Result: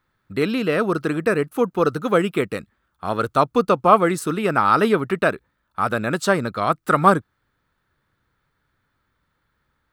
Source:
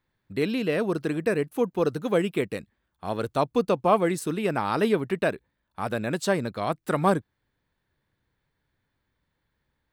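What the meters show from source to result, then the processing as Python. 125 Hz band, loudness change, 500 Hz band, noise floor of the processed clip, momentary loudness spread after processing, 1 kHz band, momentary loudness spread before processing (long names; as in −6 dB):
+4.5 dB, +6.5 dB, +5.0 dB, −72 dBFS, 9 LU, +9.5 dB, 8 LU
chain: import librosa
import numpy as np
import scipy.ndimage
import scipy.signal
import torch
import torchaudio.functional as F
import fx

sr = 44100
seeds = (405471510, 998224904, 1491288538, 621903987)

y = fx.peak_eq(x, sr, hz=1300.0, db=12.0, octaves=0.39)
y = F.gain(torch.from_numpy(y), 4.5).numpy()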